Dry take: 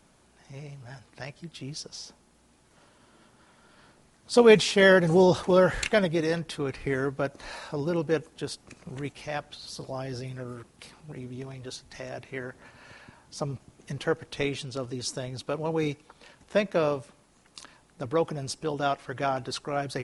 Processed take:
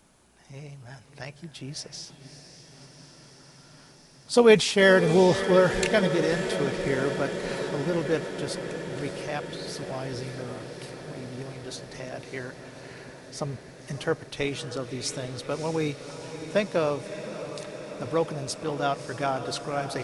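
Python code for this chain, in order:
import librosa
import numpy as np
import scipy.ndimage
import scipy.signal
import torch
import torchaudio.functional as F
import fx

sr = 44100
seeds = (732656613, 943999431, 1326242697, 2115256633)

y = fx.high_shelf(x, sr, hz=7600.0, db=4.5)
y = fx.echo_diffused(y, sr, ms=603, feedback_pct=78, wet_db=-11.0)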